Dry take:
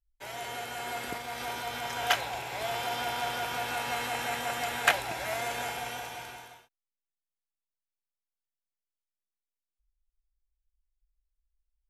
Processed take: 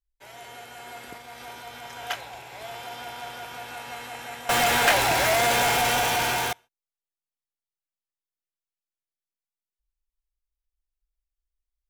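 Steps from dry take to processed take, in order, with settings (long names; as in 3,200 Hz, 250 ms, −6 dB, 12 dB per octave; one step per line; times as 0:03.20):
0:04.49–0:06.53: power curve on the samples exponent 0.35
level −5 dB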